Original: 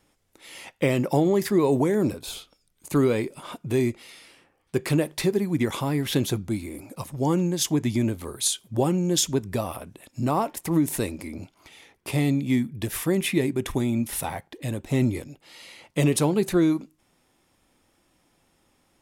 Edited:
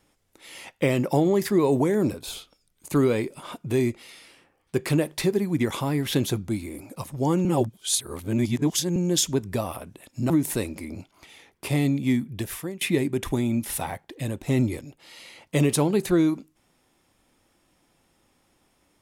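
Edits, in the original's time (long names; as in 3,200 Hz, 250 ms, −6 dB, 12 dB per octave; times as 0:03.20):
0:07.45–0:08.96: reverse
0:10.30–0:10.73: remove
0:12.78–0:13.24: fade out, to −22.5 dB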